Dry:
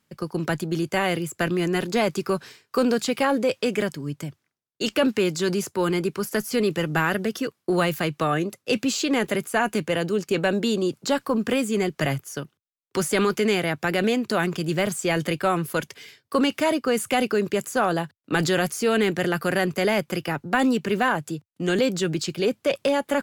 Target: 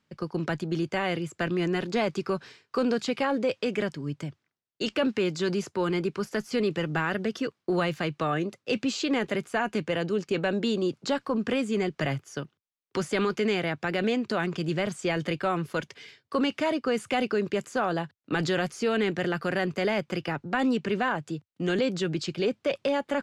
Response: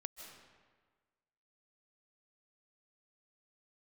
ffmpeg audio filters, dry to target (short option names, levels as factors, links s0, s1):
-filter_complex "[0:a]lowpass=5300,asplit=2[s0][s1];[s1]alimiter=limit=0.133:level=0:latency=1:release=255,volume=1.19[s2];[s0][s2]amix=inputs=2:normalize=0,volume=0.355"